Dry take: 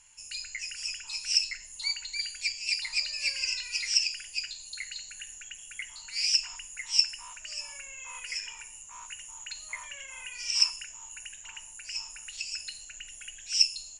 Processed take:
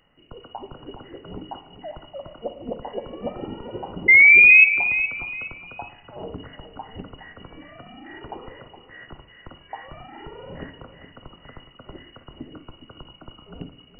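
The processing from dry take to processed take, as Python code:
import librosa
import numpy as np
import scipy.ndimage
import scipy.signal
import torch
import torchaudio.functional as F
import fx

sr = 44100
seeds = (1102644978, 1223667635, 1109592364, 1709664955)

y = fx.spec_paint(x, sr, seeds[0], shape='fall', start_s=4.08, length_s=0.57, low_hz=320.0, high_hz=850.0, level_db=-14.0)
y = fx.echo_feedback(y, sr, ms=416, feedback_pct=31, wet_db=-11.5)
y = fx.rev_spring(y, sr, rt60_s=1.0, pass_ms=(46, 57), chirp_ms=60, drr_db=12.0)
y = fx.freq_invert(y, sr, carrier_hz=2900)
y = F.gain(torch.from_numpy(y), 3.5).numpy()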